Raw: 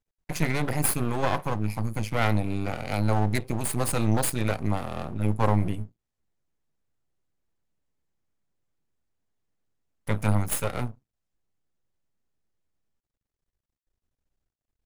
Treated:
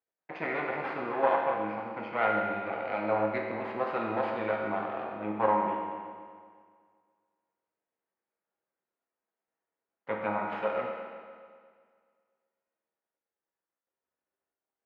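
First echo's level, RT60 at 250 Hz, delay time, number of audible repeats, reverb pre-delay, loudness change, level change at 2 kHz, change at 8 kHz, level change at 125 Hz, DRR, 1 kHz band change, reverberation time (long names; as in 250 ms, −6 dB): no echo audible, 1.9 s, no echo audible, no echo audible, 6 ms, −4.0 dB, −0.5 dB, below −40 dB, −21.0 dB, −1.5 dB, +2.0 dB, 1.9 s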